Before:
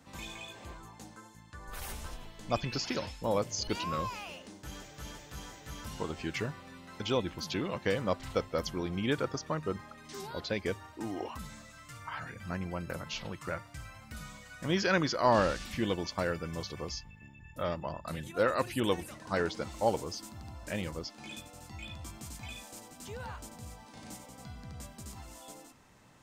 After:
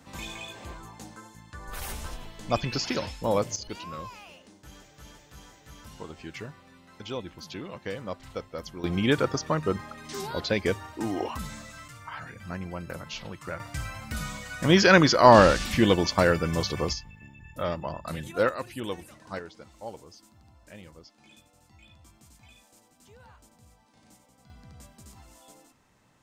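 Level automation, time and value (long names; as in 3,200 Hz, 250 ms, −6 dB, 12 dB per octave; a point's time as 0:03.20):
+5 dB
from 0:03.56 −4.5 dB
from 0:08.84 +7.5 dB
from 0:11.88 +1 dB
from 0:13.60 +11 dB
from 0:16.93 +4 dB
from 0:18.49 −4 dB
from 0:19.39 −11 dB
from 0:24.50 −4 dB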